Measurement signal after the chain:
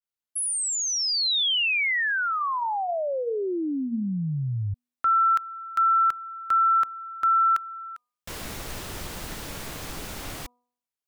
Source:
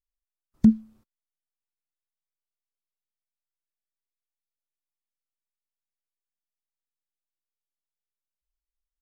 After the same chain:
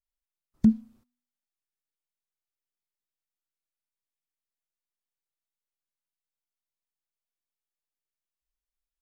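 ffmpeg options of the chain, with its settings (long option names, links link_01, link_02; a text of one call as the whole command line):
ffmpeg -i in.wav -af "bandreject=frequency=244.5:width_type=h:width=4,bandreject=frequency=489:width_type=h:width=4,bandreject=frequency=733.5:width_type=h:width=4,bandreject=frequency=978:width_type=h:width=4,bandreject=frequency=1222.5:width_type=h:width=4,adynamicequalizer=threshold=0.0251:dfrequency=1600:dqfactor=0.7:tfrequency=1600:tqfactor=0.7:attack=5:release=100:ratio=0.375:range=2:mode=boostabove:tftype=highshelf,volume=-3dB" out.wav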